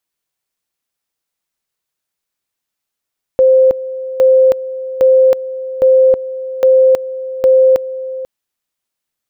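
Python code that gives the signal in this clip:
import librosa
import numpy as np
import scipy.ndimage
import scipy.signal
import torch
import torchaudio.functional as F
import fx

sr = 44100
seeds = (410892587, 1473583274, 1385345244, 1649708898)

y = fx.two_level_tone(sr, hz=522.0, level_db=-5.0, drop_db=15.0, high_s=0.32, low_s=0.49, rounds=6)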